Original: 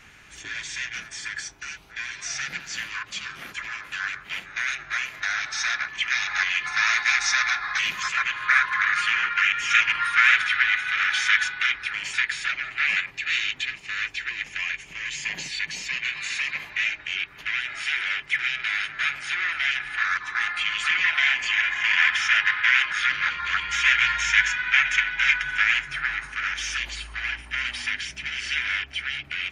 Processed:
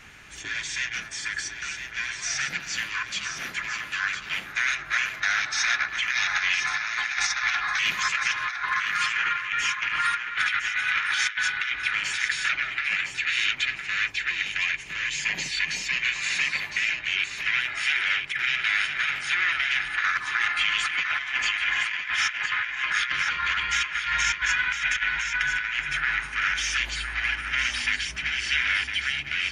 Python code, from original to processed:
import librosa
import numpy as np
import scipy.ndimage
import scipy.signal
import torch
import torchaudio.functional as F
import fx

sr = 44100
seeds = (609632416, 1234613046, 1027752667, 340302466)

y = fx.over_compress(x, sr, threshold_db=-25.0, ratio=-0.5)
y = y + 10.0 ** (-8.0 / 20.0) * np.pad(y, (int(1009 * sr / 1000.0), 0))[:len(y)]